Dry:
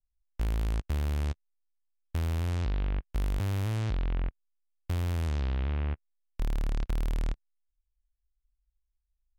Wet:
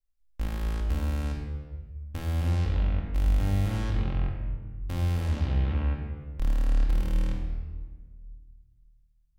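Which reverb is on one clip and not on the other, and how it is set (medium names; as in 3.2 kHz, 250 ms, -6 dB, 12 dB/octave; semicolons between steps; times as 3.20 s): simulated room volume 1400 m³, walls mixed, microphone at 2.2 m; trim -2.5 dB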